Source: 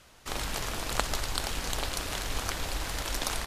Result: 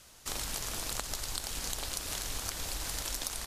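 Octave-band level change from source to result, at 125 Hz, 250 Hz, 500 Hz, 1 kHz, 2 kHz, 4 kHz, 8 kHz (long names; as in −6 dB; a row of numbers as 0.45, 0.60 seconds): −7.0, −7.0, −8.0, −8.5, −7.5, −3.5, +1.0 decibels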